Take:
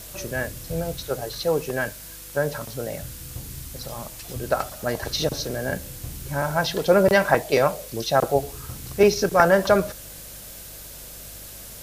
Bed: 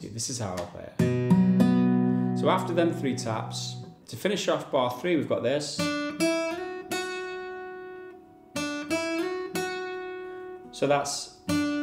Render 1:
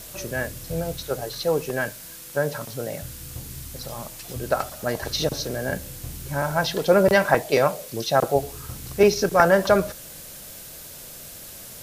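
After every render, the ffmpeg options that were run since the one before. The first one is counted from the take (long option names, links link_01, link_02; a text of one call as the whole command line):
ffmpeg -i in.wav -af "bandreject=frequency=50:width_type=h:width=4,bandreject=frequency=100:width_type=h:width=4" out.wav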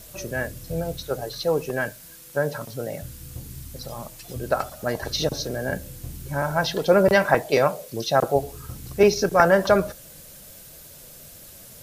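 ffmpeg -i in.wav -af "afftdn=noise_reduction=6:noise_floor=-41" out.wav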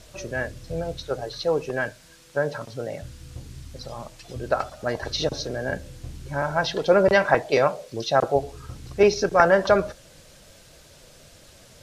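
ffmpeg -i in.wav -af "lowpass=5800,equalizer=frequency=180:width=1.4:gain=-4" out.wav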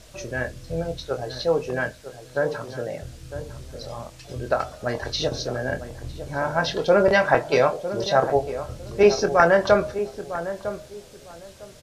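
ffmpeg -i in.wav -filter_complex "[0:a]asplit=2[link_01][link_02];[link_02]adelay=24,volume=-8dB[link_03];[link_01][link_03]amix=inputs=2:normalize=0,asplit=2[link_04][link_05];[link_05]adelay=954,lowpass=frequency=1000:poles=1,volume=-10.5dB,asplit=2[link_06][link_07];[link_07]adelay=954,lowpass=frequency=1000:poles=1,volume=0.24,asplit=2[link_08][link_09];[link_09]adelay=954,lowpass=frequency=1000:poles=1,volume=0.24[link_10];[link_04][link_06][link_08][link_10]amix=inputs=4:normalize=0" out.wav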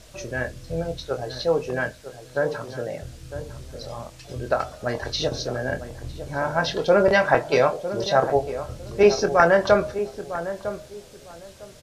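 ffmpeg -i in.wav -af anull out.wav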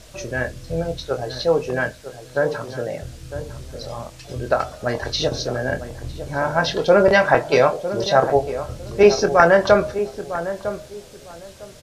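ffmpeg -i in.wav -af "volume=3.5dB,alimiter=limit=-1dB:level=0:latency=1" out.wav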